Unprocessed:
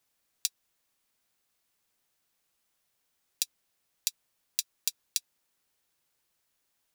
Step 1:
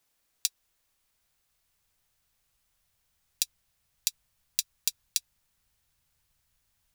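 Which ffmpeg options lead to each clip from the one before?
-af "asubboost=boost=11.5:cutoff=100,volume=1.26"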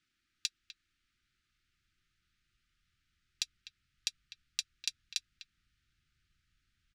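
-filter_complex "[0:a]lowpass=3900,afftfilt=real='re*(1-between(b*sr/4096,380,1200))':imag='im*(1-between(b*sr/4096,380,1200))':win_size=4096:overlap=0.75,asplit=2[s0][s1];[s1]adelay=250,highpass=300,lowpass=3400,asoftclip=type=hard:threshold=0.0891,volume=0.282[s2];[s0][s2]amix=inputs=2:normalize=0,volume=1.12"

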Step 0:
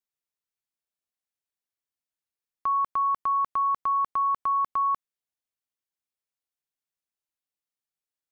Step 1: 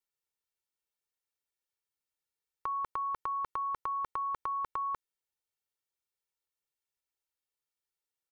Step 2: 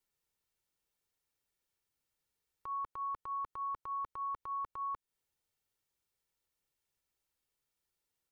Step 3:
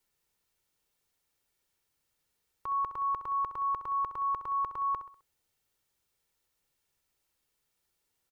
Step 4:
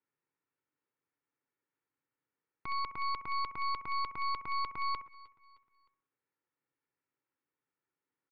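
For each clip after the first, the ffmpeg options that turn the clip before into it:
-af "aecho=1:1:2.2:0.71,volume=0.75"
-af "lowshelf=f=300:g=8,alimiter=level_in=5.01:limit=0.0631:level=0:latency=1:release=222,volume=0.2,volume=1.58"
-af "aecho=1:1:65|130|195|260:0.266|0.112|0.0469|0.0197,volume=2.11"
-af "highpass=f=120:w=0.5412,highpass=f=120:w=1.3066,equalizer=f=200:t=q:w=4:g=-8,equalizer=f=280:t=q:w=4:g=7,equalizer=f=670:t=q:w=4:g=-8,lowpass=f=2100:w=0.5412,lowpass=f=2100:w=1.3066,aeval=exprs='0.0501*(cos(1*acos(clip(val(0)/0.0501,-1,1)))-cos(1*PI/2))+0.0178*(cos(4*acos(clip(val(0)/0.0501,-1,1)))-cos(4*PI/2))':c=same,aecho=1:1:309|618|927:0.0708|0.0319|0.0143,volume=0.562"

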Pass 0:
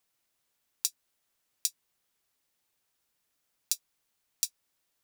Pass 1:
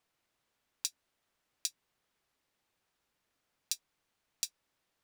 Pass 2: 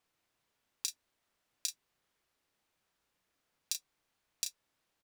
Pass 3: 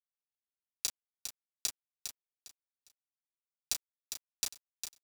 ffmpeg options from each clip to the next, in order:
-af "lowpass=f=2600:p=1,volume=1.5"
-filter_complex "[0:a]asplit=2[s0][s1];[s1]adelay=33,volume=0.501[s2];[s0][s2]amix=inputs=2:normalize=0,volume=0.891"
-af "acrusher=bits=5:mix=0:aa=0.000001,aecho=1:1:405|810|1215:0.422|0.105|0.0264,volume=1.26"

